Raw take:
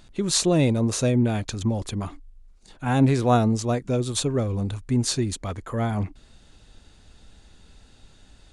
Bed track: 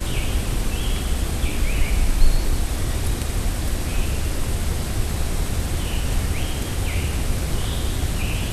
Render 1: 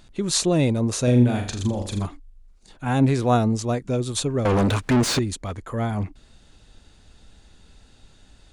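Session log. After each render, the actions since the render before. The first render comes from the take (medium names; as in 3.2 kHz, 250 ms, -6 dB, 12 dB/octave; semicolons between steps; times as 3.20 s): 1.03–2.06 s: flutter echo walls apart 7 m, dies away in 0.46 s; 4.45–5.19 s: overdrive pedal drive 34 dB, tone 2.3 kHz, clips at -11 dBFS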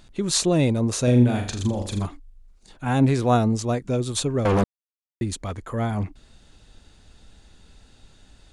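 4.64–5.21 s: mute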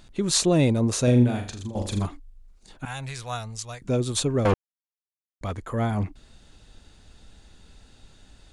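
1.04–1.75 s: fade out, to -13.5 dB; 2.85–3.82 s: amplifier tone stack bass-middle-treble 10-0-10; 4.54–5.41 s: mute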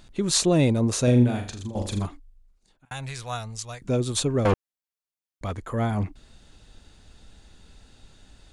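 1.85–2.91 s: fade out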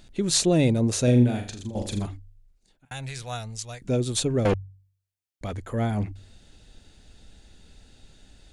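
peaking EQ 1.1 kHz -7.5 dB 0.6 oct; de-hum 48.18 Hz, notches 3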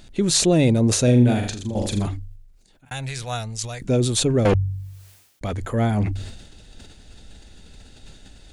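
in parallel at -2 dB: peak limiter -17 dBFS, peak gain reduction 11 dB; on the sum: decay stretcher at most 57 dB/s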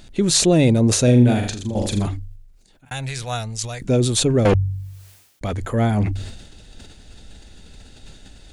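trim +2 dB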